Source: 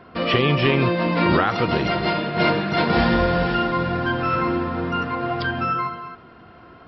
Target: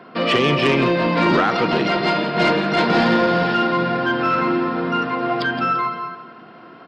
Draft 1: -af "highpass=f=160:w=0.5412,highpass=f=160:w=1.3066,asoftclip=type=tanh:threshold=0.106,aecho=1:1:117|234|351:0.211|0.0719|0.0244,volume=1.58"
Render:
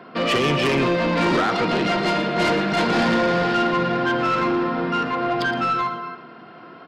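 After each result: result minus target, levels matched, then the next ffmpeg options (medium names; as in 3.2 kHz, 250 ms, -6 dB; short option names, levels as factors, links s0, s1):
echo 52 ms early; saturation: distortion +8 dB
-af "highpass=f=160:w=0.5412,highpass=f=160:w=1.3066,asoftclip=type=tanh:threshold=0.106,aecho=1:1:169|338|507:0.211|0.0719|0.0244,volume=1.58"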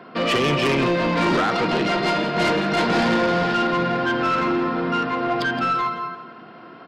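saturation: distortion +8 dB
-af "highpass=f=160:w=0.5412,highpass=f=160:w=1.3066,asoftclip=type=tanh:threshold=0.237,aecho=1:1:169|338|507:0.211|0.0719|0.0244,volume=1.58"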